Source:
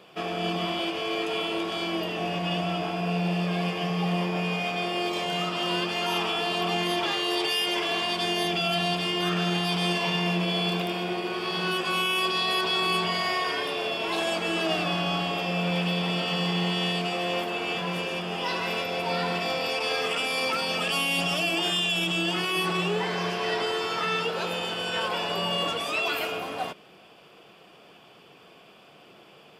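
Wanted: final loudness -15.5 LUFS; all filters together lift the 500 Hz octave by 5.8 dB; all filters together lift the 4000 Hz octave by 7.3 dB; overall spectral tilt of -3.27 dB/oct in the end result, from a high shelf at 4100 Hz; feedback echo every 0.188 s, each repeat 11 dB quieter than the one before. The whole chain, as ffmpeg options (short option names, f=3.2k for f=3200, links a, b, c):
-af "equalizer=f=500:t=o:g=7.5,equalizer=f=4k:t=o:g=6.5,highshelf=f=4.1k:g=6.5,aecho=1:1:188|376|564:0.282|0.0789|0.0221,volume=5dB"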